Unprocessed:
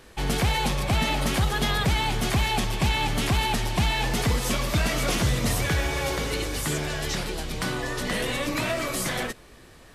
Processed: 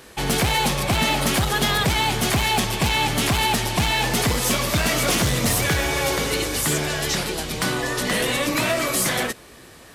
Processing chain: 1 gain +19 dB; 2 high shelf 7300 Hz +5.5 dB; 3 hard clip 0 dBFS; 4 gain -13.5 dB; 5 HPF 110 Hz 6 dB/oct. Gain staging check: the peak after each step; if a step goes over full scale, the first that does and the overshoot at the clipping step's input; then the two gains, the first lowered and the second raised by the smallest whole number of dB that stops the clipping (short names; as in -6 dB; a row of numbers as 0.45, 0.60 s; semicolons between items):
+5.0, +5.5, 0.0, -13.5, -9.0 dBFS; step 1, 5.5 dB; step 1 +13 dB, step 4 -7.5 dB